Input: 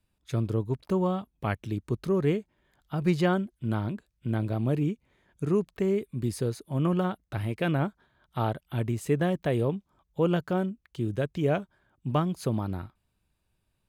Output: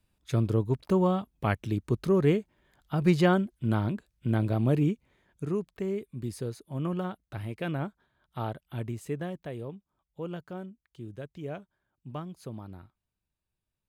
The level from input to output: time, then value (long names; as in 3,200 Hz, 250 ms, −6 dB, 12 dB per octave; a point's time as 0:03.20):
0:04.91 +2 dB
0:05.59 −5.5 dB
0:08.87 −5.5 dB
0:09.55 −12 dB